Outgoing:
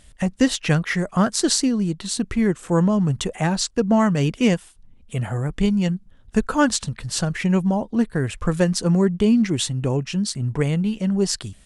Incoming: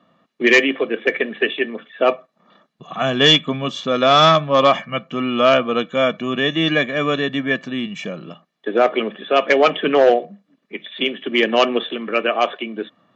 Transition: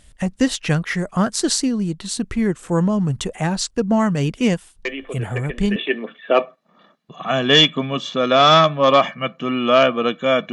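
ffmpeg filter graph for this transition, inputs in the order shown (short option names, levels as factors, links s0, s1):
-filter_complex "[1:a]asplit=2[s0][s1];[0:a]apad=whole_dur=10.52,atrim=end=10.52,atrim=end=5.762[s2];[s1]atrim=start=1.468:end=6.23[s3];[s0]atrim=start=0.56:end=1.47,asetpts=PTS-STARTPTS,volume=0.266,afade=t=in:d=0.004:c=hsin,afade=t=out:st=0.906:d=0.004:c=hsin,adelay=213885S[s4];[s2][s3]acrossfade=d=0.004:c1=hsin:c2=hsin[s5];[s5][s4]amix=inputs=2:normalize=0"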